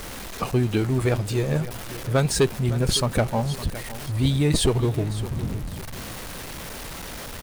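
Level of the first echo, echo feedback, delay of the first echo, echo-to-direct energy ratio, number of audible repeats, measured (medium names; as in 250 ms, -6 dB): -15.0 dB, 31%, 560 ms, -14.5 dB, 2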